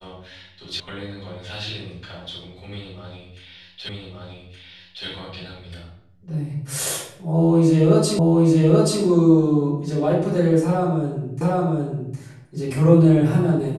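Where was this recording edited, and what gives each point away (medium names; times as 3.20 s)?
0.80 s: sound stops dead
3.89 s: repeat of the last 1.17 s
8.19 s: repeat of the last 0.83 s
11.41 s: repeat of the last 0.76 s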